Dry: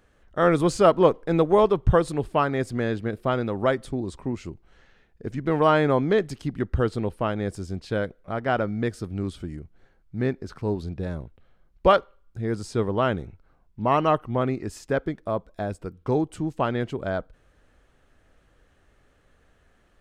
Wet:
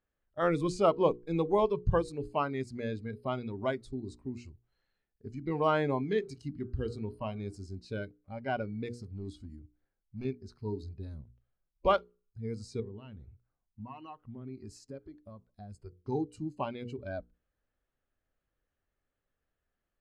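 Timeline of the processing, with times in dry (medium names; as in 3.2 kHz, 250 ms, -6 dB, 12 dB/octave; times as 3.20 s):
6.03–7.68 s: de-hum 77.98 Hz, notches 20
8.88–10.25 s: hard clipper -25 dBFS
12.80–15.74 s: compression 4:1, threshold -29 dBFS
whole clip: spectral noise reduction 16 dB; Bessel low-pass 6.9 kHz, order 2; hum notches 60/120/180/240/300/360/420/480 Hz; trim -8 dB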